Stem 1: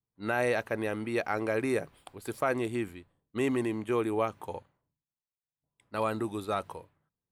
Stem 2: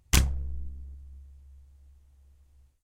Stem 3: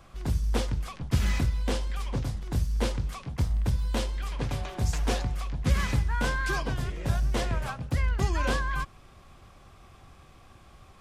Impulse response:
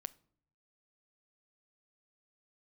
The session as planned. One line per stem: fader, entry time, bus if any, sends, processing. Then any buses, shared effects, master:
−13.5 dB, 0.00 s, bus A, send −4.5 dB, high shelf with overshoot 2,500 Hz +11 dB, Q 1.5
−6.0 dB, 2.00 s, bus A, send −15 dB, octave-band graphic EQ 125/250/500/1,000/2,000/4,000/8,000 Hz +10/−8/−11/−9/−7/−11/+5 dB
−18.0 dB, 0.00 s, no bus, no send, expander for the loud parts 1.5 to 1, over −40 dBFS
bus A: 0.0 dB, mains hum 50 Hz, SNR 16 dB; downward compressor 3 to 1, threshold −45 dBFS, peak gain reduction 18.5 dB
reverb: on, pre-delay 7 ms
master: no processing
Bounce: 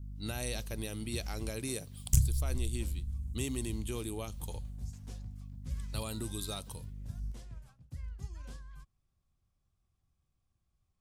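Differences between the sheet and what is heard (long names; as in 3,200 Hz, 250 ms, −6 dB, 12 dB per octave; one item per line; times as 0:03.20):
stem 3 −18.0 dB → −26.0 dB
master: extra bass and treble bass +13 dB, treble +12 dB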